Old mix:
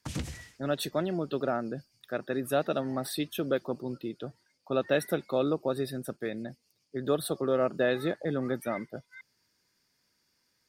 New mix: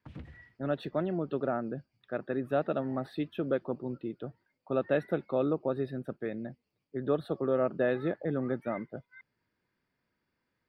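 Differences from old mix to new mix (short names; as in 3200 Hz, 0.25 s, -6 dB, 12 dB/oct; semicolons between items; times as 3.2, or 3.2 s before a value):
background -9.5 dB; master: add air absorption 470 m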